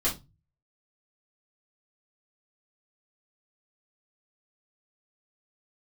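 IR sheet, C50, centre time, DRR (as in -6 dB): 11.0 dB, 20 ms, -7.5 dB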